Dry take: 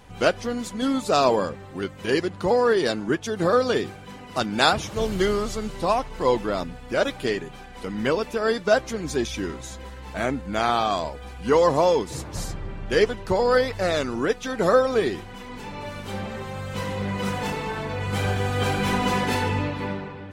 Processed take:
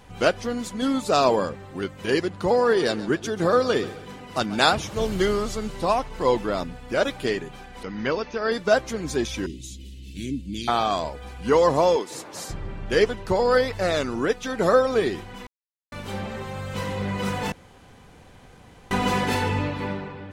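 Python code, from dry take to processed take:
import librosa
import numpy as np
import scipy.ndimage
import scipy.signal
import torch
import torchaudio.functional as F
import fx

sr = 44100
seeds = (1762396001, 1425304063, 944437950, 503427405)

y = fx.echo_feedback(x, sr, ms=136, feedback_pct=42, wet_db=-16.5, at=(2.29, 4.75))
y = fx.cheby_ripple(y, sr, hz=6500.0, ripple_db=3, at=(7.83, 8.52))
y = fx.ellip_bandstop(y, sr, low_hz=330.0, high_hz=2800.0, order=3, stop_db=50, at=(9.46, 10.68))
y = fx.highpass(y, sr, hz=330.0, slope=12, at=(11.96, 12.5))
y = fx.edit(y, sr, fx.silence(start_s=15.47, length_s=0.45),
    fx.room_tone_fill(start_s=17.52, length_s=1.39), tone=tone)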